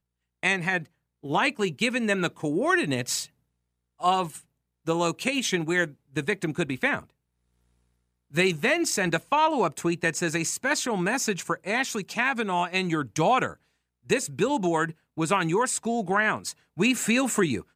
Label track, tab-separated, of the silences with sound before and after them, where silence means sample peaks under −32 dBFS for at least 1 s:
7.000000	8.350000	silence